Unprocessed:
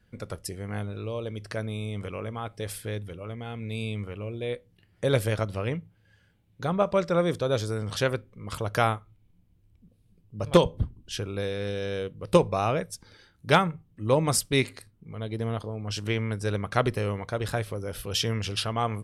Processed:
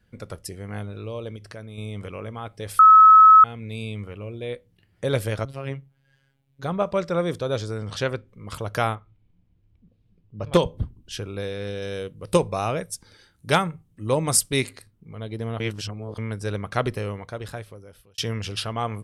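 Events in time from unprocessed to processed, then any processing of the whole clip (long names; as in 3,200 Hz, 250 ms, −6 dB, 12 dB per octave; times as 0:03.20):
0:01.36–0:01.78: downward compressor 2 to 1, threshold −40 dBFS
0:02.79–0:03.44: beep over 1,290 Hz −7 dBFS
0:05.45–0:06.63: phases set to zero 136 Hz
0:07.57–0:08.29: low-pass filter 7,700 Hz
0:08.95–0:10.53: low-pass filter 4,000 Hz
0:11.82–0:14.71: parametric band 9,400 Hz +8 dB 1.2 octaves
0:15.60–0:16.18: reverse
0:16.92–0:18.18: fade out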